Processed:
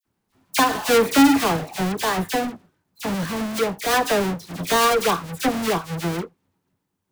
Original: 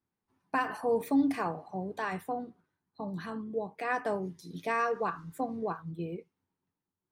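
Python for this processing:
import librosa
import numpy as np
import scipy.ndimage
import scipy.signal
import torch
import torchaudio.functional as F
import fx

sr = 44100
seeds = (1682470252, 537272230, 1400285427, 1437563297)

y = fx.halfwave_hold(x, sr)
y = fx.dispersion(y, sr, late='lows', ms=54.0, hz=2000.0)
y = F.gain(torch.from_numpy(y), 8.5).numpy()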